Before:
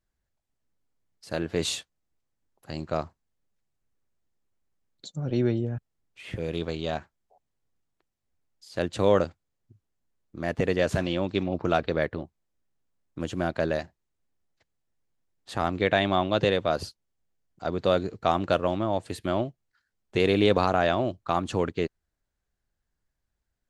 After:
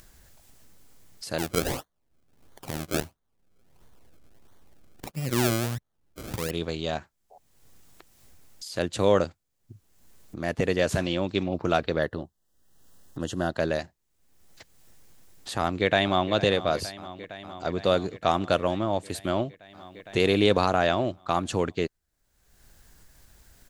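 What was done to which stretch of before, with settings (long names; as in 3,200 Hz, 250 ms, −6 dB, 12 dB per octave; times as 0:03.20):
0:01.38–0:06.51: sample-and-hold swept by an LFO 33× 1.5 Hz
0:11.99–0:13.58: Butterworth band-reject 2,300 Hz, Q 3.3
0:15.59–0:16.32: delay throw 460 ms, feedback 80%, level −16 dB
whole clip: high-shelf EQ 4,900 Hz +8.5 dB; upward compression, threshold −33 dBFS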